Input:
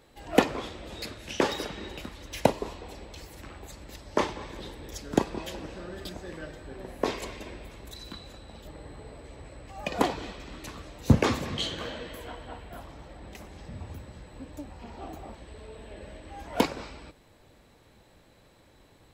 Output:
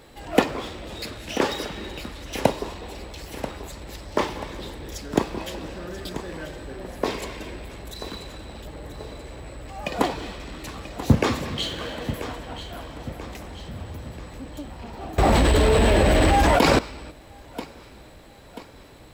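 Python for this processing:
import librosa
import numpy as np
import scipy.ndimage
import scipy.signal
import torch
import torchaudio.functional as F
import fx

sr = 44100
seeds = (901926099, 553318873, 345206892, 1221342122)

p1 = fx.law_mismatch(x, sr, coded='mu')
p2 = fx.notch(p1, sr, hz=6300.0, q=24.0)
p3 = p2 + fx.echo_feedback(p2, sr, ms=986, feedback_pct=48, wet_db=-12, dry=0)
p4 = fx.env_flatten(p3, sr, amount_pct=100, at=(15.18, 16.79))
y = F.gain(torch.from_numpy(p4), 2.0).numpy()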